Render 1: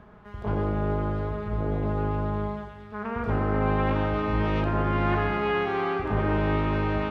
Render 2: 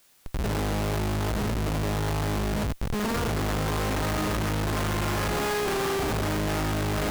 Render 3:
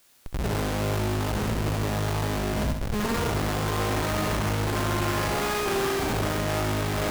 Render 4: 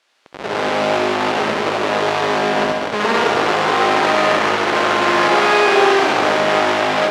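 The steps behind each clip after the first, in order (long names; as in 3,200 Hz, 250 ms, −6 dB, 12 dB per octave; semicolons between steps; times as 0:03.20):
hum removal 46.66 Hz, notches 23; comparator with hysteresis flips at −36.5 dBFS; bit-depth reduction 10 bits, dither triangular
flutter between parallel walls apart 11.3 metres, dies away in 0.67 s
automatic gain control gain up to 10.5 dB; band-pass filter 430–3,800 Hz; on a send at −4 dB: convolution reverb RT60 1.4 s, pre-delay 88 ms; on the sum: level +3 dB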